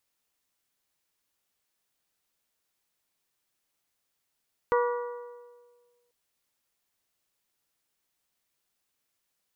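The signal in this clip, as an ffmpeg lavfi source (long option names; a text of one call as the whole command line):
ffmpeg -f lavfi -i "aevalsrc='0.0891*pow(10,-3*t/1.59)*sin(2*PI*483*t)+0.0562*pow(10,-3*t/1.291)*sin(2*PI*966*t)+0.0355*pow(10,-3*t/1.223)*sin(2*PI*1159.2*t)+0.0224*pow(10,-3*t/1.144)*sin(2*PI*1449*t)+0.0141*pow(10,-3*t/1.049)*sin(2*PI*1932*t)':duration=1.39:sample_rate=44100" out.wav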